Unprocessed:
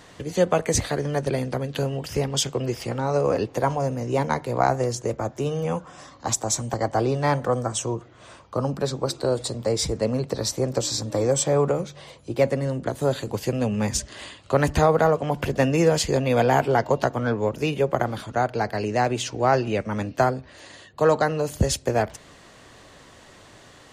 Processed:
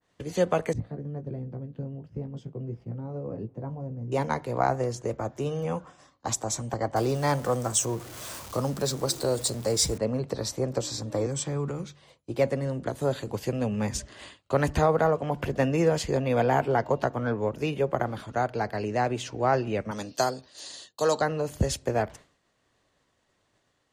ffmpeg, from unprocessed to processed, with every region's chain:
-filter_complex "[0:a]asettb=1/sr,asplit=3[s0][s1][s2];[s0]atrim=end=0.734[s3];[s1]atrim=start=0.73:end=4.12,asetpts=PTS-STARTPTS,afade=t=in:d=0.004:c=qsin,afade=t=out:st=3.386:d=0.004:c=qsin,bandpass=f=150:t=q:w=1.3,asplit=2[s4][s5];[s5]adelay=18,volume=0.422[s6];[s4][s6]amix=inputs=2:normalize=0,atrim=end_sample=149499[s7];[s2]atrim=start=4.116[s8];[s3][s7]acrossfade=d=0.004:c1=hsin:c2=qsin[s9];[s9][s8]acrossfade=d=0.004:c1=qsin:c2=hsin,asettb=1/sr,asplit=3[s10][s11][s12];[s10]atrim=end=6.964[s13];[s11]atrim=start=6.96:end=9.98,asetpts=PTS-STARTPTS,afade=t=in:d=0.004:c=qsin,afade=t=out:st=3.016:d=0.004:c=qsin,aeval=exprs='val(0)+0.5*0.0158*sgn(val(0))':c=same,bass=f=250:g=0,treble=f=4000:g=14[s14];[s12]atrim=start=9.976[s15];[s13][s14]acrossfade=d=0.004:c1=hsin:c2=qsin[s16];[s16][s15]acrossfade=d=0.004:c1=qsin:c2=hsin,asettb=1/sr,asplit=3[s17][s18][s19];[s17]atrim=end=11.264[s20];[s18]atrim=start=11.26:end=12.02,asetpts=PTS-STARTPTS,afade=t=in:d=0.004:c=qsin,afade=t=out:st=0.756:d=0.004:c=qsin,lowpass=11000,equalizer=f=610:w=1.9:g=-11,acrossover=split=320|3000[s21][s22][s23];[s22]acompressor=threshold=0.0251:ratio=2.5:attack=3.2:release=140:knee=2.83:detection=peak[s24];[s21][s24][s23]amix=inputs=3:normalize=0[s25];[s19]atrim=start=12.016[s26];[s20][s25]acrossfade=d=0.004:c1=hsin:c2=qsin[s27];[s27][s26]acrossfade=d=0.004:c1=qsin:c2=hsin,asettb=1/sr,asplit=3[s28][s29][s30];[s28]atrim=end=19.914[s31];[s29]atrim=start=19.91:end=21.21,asetpts=PTS-STARTPTS,afade=t=in:d=0.004:c=qsin,afade=t=out:st=1.296:d=0.004:c=qsin,highpass=f=290:p=1,highshelf=f=3100:t=q:w=1.5:g=11.5,bandreject=f=2200:w=30[s32];[s30]atrim=start=21.206[s33];[s31][s32]acrossfade=d=0.004:c1=hsin:c2=qsin[s34];[s34][s33]acrossfade=d=0.004:c1=qsin:c2=hsin,agate=range=0.0224:threshold=0.0158:ratio=3:detection=peak,adynamicequalizer=threshold=0.00891:dfrequency=2700:dqfactor=0.7:tfrequency=2700:tqfactor=0.7:attack=5:release=100:ratio=0.375:range=3:mode=cutabove:tftype=highshelf,volume=0.631"

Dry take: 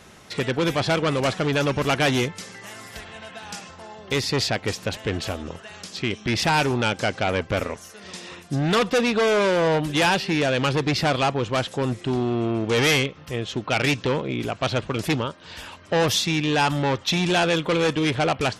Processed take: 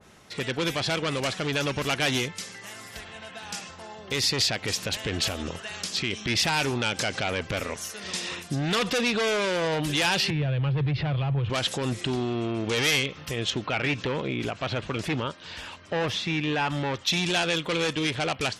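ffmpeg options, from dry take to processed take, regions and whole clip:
-filter_complex "[0:a]asettb=1/sr,asplit=3[s0][s1][s2];[s0]atrim=end=10.304[s3];[s1]atrim=start=10.3:end=11.5,asetpts=PTS-STARTPTS,afade=t=in:d=0.004:c=qsin,afade=t=out:st=1.196:d=0.004:c=qsin,lowpass=f=3400:w=0.5412,lowpass=f=3400:w=1.3066,lowshelf=f=170:t=q:w=3:g=8,acrossover=split=230|940[s4][s5][s6];[s4]acompressor=threshold=0.126:ratio=4[s7];[s5]acompressor=threshold=0.0398:ratio=4[s8];[s6]acompressor=threshold=0.0126:ratio=4[s9];[s7][s8][s9]amix=inputs=3:normalize=0[s10];[s2]atrim=start=11.496[s11];[s3][s10]acrossfade=d=0.004:c1=hsin:c2=qsin[s12];[s12][s11]acrossfade=d=0.004:c1=qsin:c2=hsin,asettb=1/sr,asplit=3[s13][s14][s15];[s13]atrim=end=13.504[s16];[s14]atrim=start=13.5:end=16.94,asetpts=PTS-STARTPTS,afade=t=in:d=0.004:c=qsin,afade=t=out:st=3.436:d=0.004:c=qsin,lowpass=8500,acrossover=split=2700[s17][s18];[s18]acompressor=threshold=0.00708:ratio=4:attack=1:release=60[s19];[s17][s19]amix=inputs=2:normalize=0[s20];[s15]atrim=start=16.936[s21];[s16][s20]acrossfade=d=0.004:c1=hsin:c2=qsin[s22];[s22][s21]acrossfade=d=0.004:c1=qsin:c2=hsin,dynaudnorm=f=670:g=13:m=2.66,alimiter=limit=0.178:level=0:latency=1:release=64,adynamicequalizer=threshold=0.0126:dfrequency=1700:dqfactor=0.7:tfrequency=1700:tqfactor=0.7:attack=5:release=100:ratio=0.375:range=3.5:mode=boostabove:tftype=highshelf,volume=0.531"

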